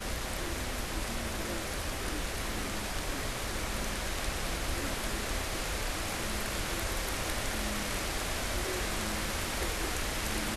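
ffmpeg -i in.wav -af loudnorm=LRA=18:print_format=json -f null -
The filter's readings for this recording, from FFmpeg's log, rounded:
"input_i" : "-33.7",
"input_tp" : "-17.0",
"input_lra" : "2.0",
"input_thresh" : "-43.7",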